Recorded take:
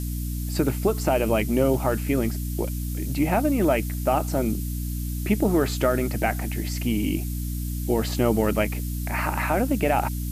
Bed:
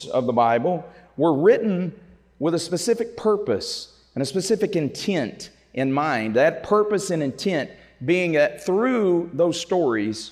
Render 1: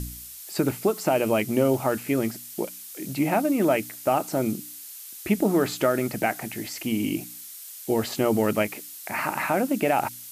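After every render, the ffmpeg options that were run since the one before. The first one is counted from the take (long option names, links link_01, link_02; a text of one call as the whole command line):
ffmpeg -i in.wav -af "bandreject=frequency=60:width_type=h:width=4,bandreject=frequency=120:width_type=h:width=4,bandreject=frequency=180:width_type=h:width=4,bandreject=frequency=240:width_type=h:width=4,bandreject=frequency=300:width_type=h:width=4" out.wav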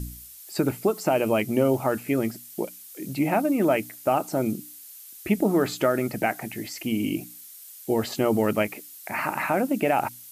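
ffmpeg -i in.wav -af "afftdn=noise_reduction=6:noise_floor=-42" out.wav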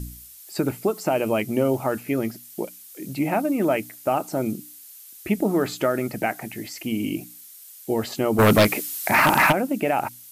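ffmpeg -i in.wav -filter_complex "[0:a]asettb=1/sr,asplit=3[link_01][link_02][link_03];[link_01]atrim=end=2.014[link_04];[link_02]atrim=start=2.01:end=2.43,asetpts=PTS-STARTPTS,afade=type=in:duration=0.004:curve=qsin,afade=type=out:start_time=0.416:duration=0.004:curve=qsin,equalizer=frequency=8000:width=5.6:gain=-6[link_05];[link_03]atrim=start=2.426[link_06];[link_04][link_05]acrossfade=duration=0.004:curve1=hsin:curve2=qsin[link_07];[link_07][link_06]acrossfade=duration=0.004:curve1=qsin:curve2=hsin,asplit=3[link_08][link_09][link_10];[link_08]afade=type=out:start_time=8.38:duration=0.02[link_11];[link_09]aeval=exprs='0.299*sin(PI/2*2.82*val(0)/0.299)':channel_layout=same,afade=type=in:start_time=8.38:duration=0.02,afade=type=out:start_time=9.51:duration=0.02[link_12];[link_10]afade=type=in:start_time=9.51:duration=0.02[link_13];[link_11][link_12][link_13]amix=inputs=3:normalize=0" out.wav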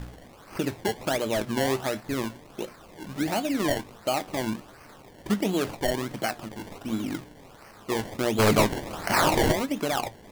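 ffmpeg -i in.wav -af "acrusher=samples=24:mix=1:aa=0.000001:lfo=1:lforange=24:lforate=1.4,flanger=delay=6.6:depth=4.1:regen=73:speed=0.82:shape=triangular" out.wav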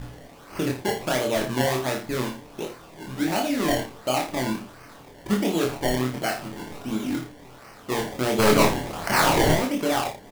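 ffmpeg -i in.wav -filter_complex "[0:a]asplit=2[link_01][link_02];[link_02]adelay=31,volume=-5dB[link_03];[link_01][link_03]amix=inputs=2:normalize=0,aecho=1:1:24|80:0.668|0.316" out.wav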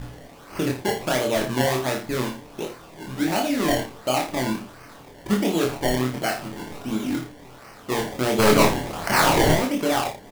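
ffmpeg -i in.wav -af "volume=1.5dB" out.wav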